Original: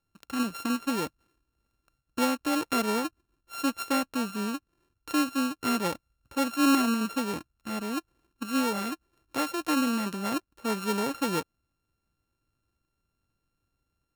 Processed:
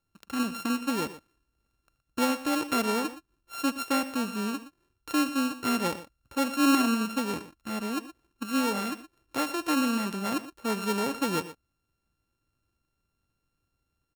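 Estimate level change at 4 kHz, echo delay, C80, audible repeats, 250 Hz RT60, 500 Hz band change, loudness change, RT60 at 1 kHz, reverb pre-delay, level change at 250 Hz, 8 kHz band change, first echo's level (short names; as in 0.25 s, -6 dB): +0.5 dB, 78 ms, none, 2, none, 0.0 dB, +0.5 dB, none, none, 0.0 dB, +0.5 dB, -18.5 dB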